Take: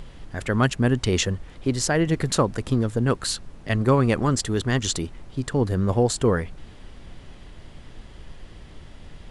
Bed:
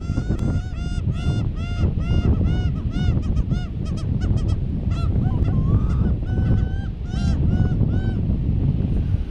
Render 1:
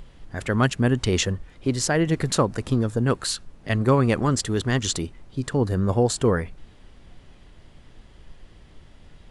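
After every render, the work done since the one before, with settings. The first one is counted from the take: noise print and reduce 6 dB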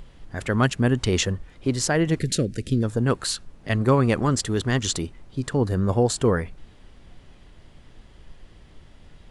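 2.19–2.83 Butterworth band-stop 950 Hz, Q 0.6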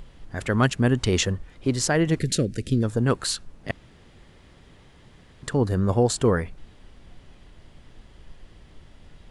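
3.71–5.43 room tone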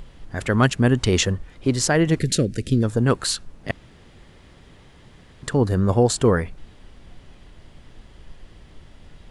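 gain +3 dB

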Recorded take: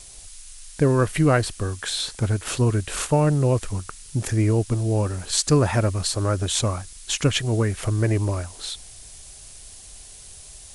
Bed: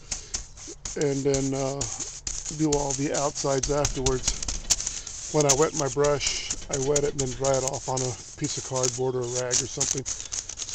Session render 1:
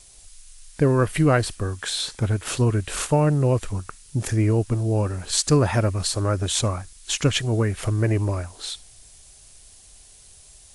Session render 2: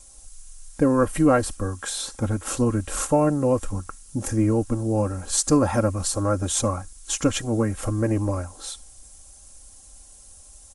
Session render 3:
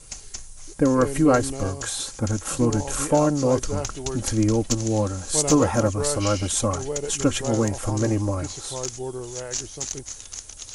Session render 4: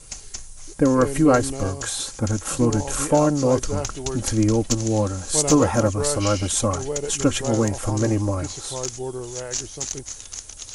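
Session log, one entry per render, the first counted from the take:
noise print and reduce 6 dB
band shelf 2900 Hz -8.5 dB; comb 3.7 ms, depth 65%
add bed -5 dB
gain +1.5 dB

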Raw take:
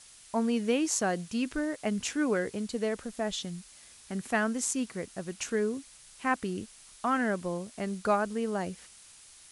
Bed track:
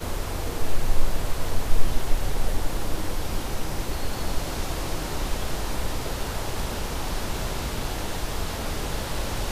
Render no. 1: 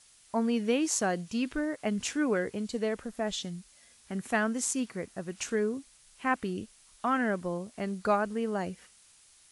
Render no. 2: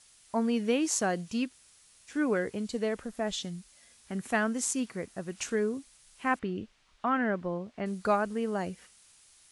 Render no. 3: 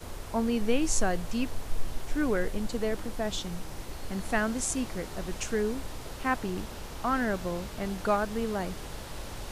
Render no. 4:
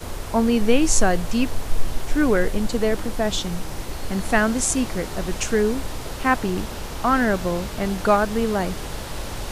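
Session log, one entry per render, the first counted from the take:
noise print and reduce 6 dB
1.48–2.12 room tone, crossfade 0.10 s; 6.39–7.86 LPF 3200 Hz
add bed track -11 dB
gain +9 dB

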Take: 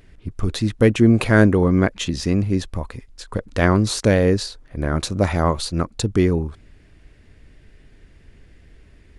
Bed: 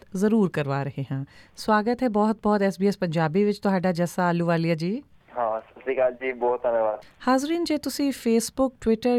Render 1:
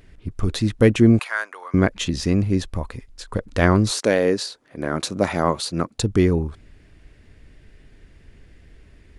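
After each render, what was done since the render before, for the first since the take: 1.19–1.74 ladder high-pass 840 Hz, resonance 25%; 3.9–5.98 HPF 310 Hz -> 130 Hz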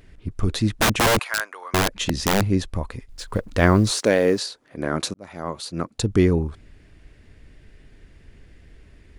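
0.7–2.46 wrapped overs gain 12.5 dB; 3.09–4.39 G.711 law mismatch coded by mu; 5.14–6.16 fade in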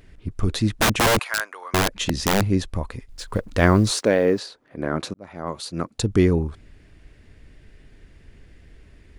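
3.99–5.47 bell 9000 Hz -10 dB 2.3 oct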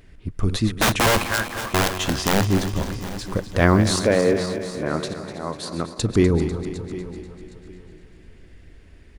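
regenerating reverse delay 0.124 s, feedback 76%, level -10.5 dB; feedback echo 0.76 s, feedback 24%, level -17 dB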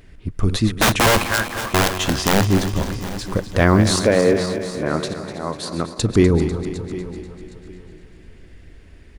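gain +3 dB; limiter -3 dBFS, peak gain reduction 2.5 dB

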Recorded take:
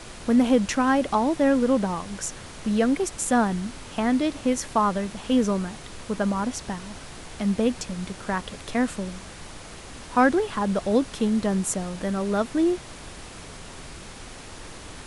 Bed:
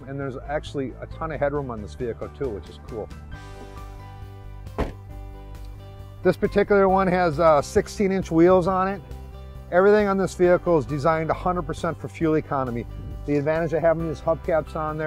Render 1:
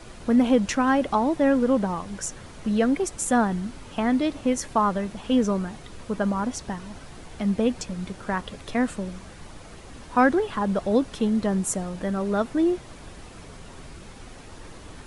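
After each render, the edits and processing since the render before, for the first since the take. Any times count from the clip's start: denoiser 7 dB, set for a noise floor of -42 dBFS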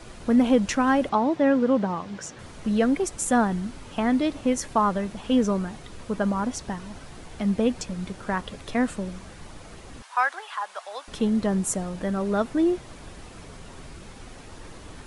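1.09–2.39 BPF 110–5300 Hz; 10.02–11.08 HPF 830 Hz 24 dB/oct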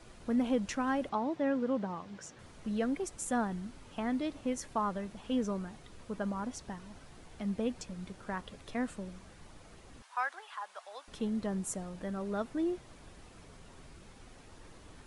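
gain -11 dB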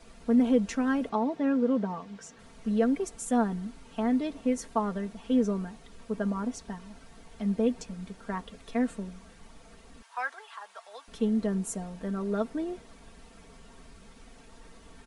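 dynamic EQ 370 Hz, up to +5 dB, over -44 dBFS, Q 0.72; comb 4.4 ms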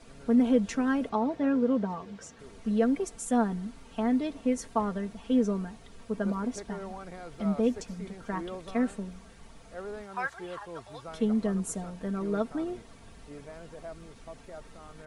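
add bed -23.5 dB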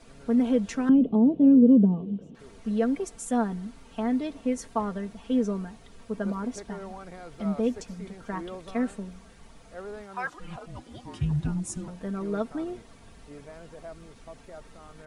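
0.89–2.35 EQ curve 100 Hz 0 dB, 180 Hz +14 dB, 390 Hz +7 dB, 1900 Hz -25 dB, 3000 Hz -5 dB, 4900 Hz -25 dB; 10.27–11.88 frequency shift -370 Hz

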